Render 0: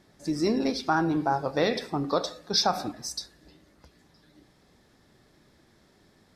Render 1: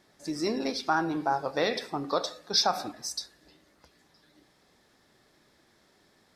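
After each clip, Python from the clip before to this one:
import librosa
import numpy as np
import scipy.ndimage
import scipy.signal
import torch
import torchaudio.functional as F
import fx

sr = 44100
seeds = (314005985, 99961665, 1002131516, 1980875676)

y = fx.low_shelf(x, sr, hz=280.0, db=-10.5)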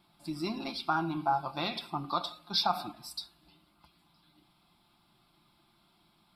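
y = fx.fixed_phaser(x, sr, hz=1800.0, stages=6)
y = y + 0.44 * np.pad(y, (int(5.8 * sr / 1000.0), 0))[:len(y)]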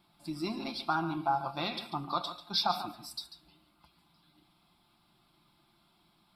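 y = x + 10.0 ** (-12.0 / 20.0) * np.pad(x, (int(142 * sr / 1000.0), 0))[:len(x)]
y = F.gain(torch.from_numpy(y), -1.0).numpy()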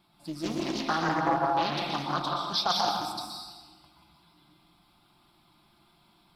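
y = fx.rev_plate(x, sr, seeds[0], rt60_s=1.4, hf_ratio=0.8, predelay_ms=110, drr_db=-1.5)
y = fx.doppler_dist(y, sr, depth_ms=0.44)
y = F.gain(torch.from_numpy(y), 1.5).numpy()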